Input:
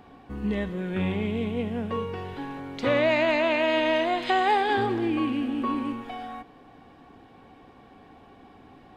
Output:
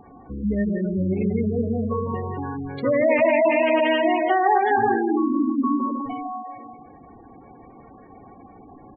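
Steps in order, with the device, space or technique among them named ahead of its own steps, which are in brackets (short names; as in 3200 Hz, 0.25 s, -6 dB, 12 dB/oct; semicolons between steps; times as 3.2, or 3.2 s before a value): 4.21–5.12 low shelf 310 Hz -3 dB; bouncing-ball echo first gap 0.16 s, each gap 0.6×, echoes 5; saturated reverb return (on a send at -14 dB: reverb RT60 1.5 s, pre-delay 80 ms + soft clip -22 dBFS, distortion -10 dB); on the sum: spectral gate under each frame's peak -15 dB strong; gain +3.5 dB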